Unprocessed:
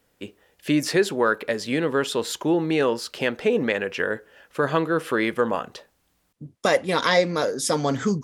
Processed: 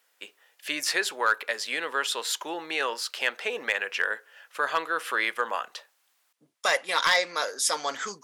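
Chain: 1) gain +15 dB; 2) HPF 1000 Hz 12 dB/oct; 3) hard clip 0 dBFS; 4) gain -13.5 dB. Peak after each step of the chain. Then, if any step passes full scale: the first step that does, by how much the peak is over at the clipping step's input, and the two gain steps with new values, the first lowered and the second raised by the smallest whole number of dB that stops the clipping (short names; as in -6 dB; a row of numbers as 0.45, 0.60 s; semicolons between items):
+9.0, +8.0, 0.0, -13.5 dBFS; step 1, 8.0 dB; step 1 +7 dB, step 4 -5.5 dB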